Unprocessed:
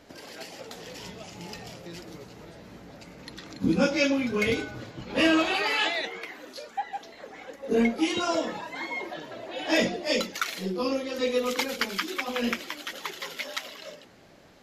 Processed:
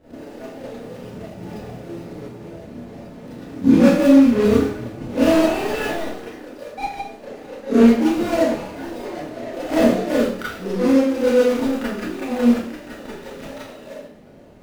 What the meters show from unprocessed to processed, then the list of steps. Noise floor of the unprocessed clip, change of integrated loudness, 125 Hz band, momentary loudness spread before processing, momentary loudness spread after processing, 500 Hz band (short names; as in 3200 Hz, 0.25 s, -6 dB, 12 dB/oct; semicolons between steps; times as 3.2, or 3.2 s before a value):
-51 dBFS, +10.0 dB, +9.5 dB, 19 LU, 22 LU, +9.5 dB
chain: median filter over 41 samples; Schroeder reverb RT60 0.49 s, combs from 26 ms, DRR -9.5 dB; gain +2 dB